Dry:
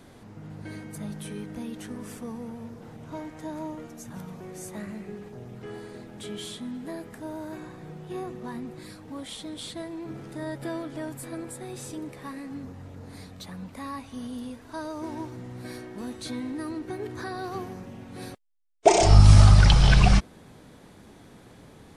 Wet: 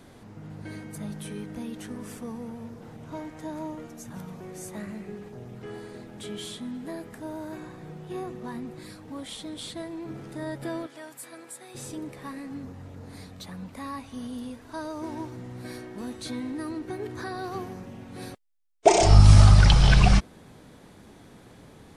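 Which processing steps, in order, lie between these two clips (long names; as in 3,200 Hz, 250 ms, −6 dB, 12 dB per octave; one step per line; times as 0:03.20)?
0:10.86–0:11.75: high-pass filter 1,200 Hz 6 dB per octave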